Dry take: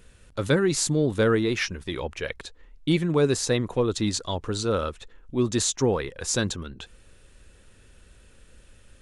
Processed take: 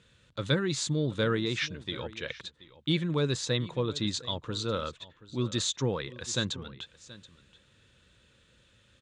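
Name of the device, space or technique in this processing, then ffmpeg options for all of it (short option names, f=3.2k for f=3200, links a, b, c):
car door speaker: -af "highpass=96,equalizer=f=130:t=q:w=4:g=5,equalizer=f=260:t=q:w=4:g=-3,equalizer=f=400:t=q:w=4:g=-5,equalizer=f=740:t=q:w=4:g=-7,equalizer=f=3.6k:t=q:w=4:g=8,equalizer=f=5.5k:t=q:w=4:g=-4,lowpass=f=7.3k:w=0.5412,lowpass=f=7.3k:w=1.3066,aecho=1:1:728:0.119,volume=-5dB"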